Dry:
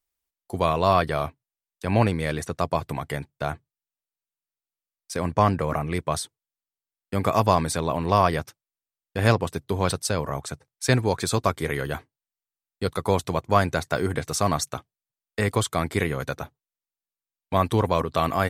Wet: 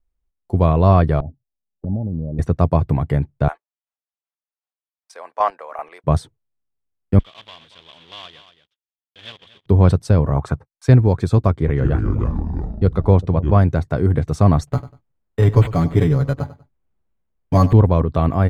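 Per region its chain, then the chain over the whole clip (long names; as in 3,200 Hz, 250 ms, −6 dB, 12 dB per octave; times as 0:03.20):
0:01.20–0:02.39: Chebyshev low-pass with heavy ripple 850 Hz, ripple 6 dB + downward compressor 8 to 1, threshold −34 dBFS + flanger swept by the level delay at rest 5.9 ms, full sweep at −36.5 dBFS
0:03.48–0:06.04: high-pass filter 660 Hz 24 dB per octave + square-wave tremolo 2.6 Hz, depth 60%, duty 25%
0:07.19–0:09.66: one scale factor per block 3 bits + resonant band-pass 3,300 Hz, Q 7.8 + single-tap delay 235 ms −12.5 dB
0:10.36–0:10.86: downward expander −53 dBFS + parametric band 1,100 Hz +11.5 dB 1.3 octaves
0:11.51–0:13.58: bucket-brigade delay 252 ms, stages 1,024, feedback 51%, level −15 dB + delay with pitch and tempo change per echo 173 ms, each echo −5 semitones, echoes 3, each echo −6 dB + high-frequency loss of the air 63 metres
0:14.67–0:17.73: comb filter 7 ms, depth 79% + repeating echo 96 ms, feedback 24%, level −16.5 dB + bad sample-rate conversion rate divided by 8×, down none, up hold
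whole clip: spectral tilt −4.5 dB per octave; automatic gain control gain up to 6 dB; level −1 dB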